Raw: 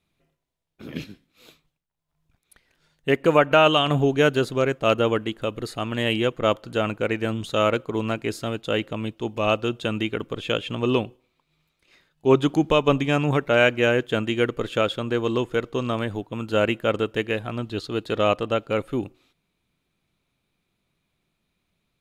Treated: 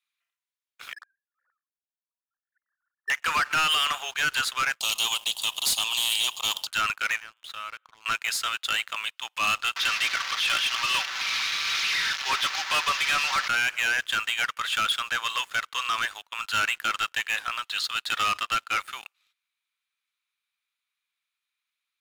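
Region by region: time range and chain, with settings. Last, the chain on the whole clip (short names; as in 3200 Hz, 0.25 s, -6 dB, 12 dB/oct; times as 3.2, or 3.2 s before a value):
0.93–3.1 sine-wave speech + rippled Chebyshev low-pass 1800 Hz, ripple 3 dB
4.8–6.67 Chebyshev band-stop 890–3100 Hz, order 3 + spectral compressor 2:1
7.2–8.06 tone controls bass +8 dB, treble -15 dB + compressor 5:1, threshold -31 dBFS + resonator 110 Hz, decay 0.53 s, mix 40%
9.76–13.48 delta modulation 32 kbps, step -29 dBFS + comb 5.2 ms, depth 39%
whole clip: inverse Chebyshev high-pass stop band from 270 Hz, stop band 70 dB; limiter -18 dBFS; sample leveller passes 3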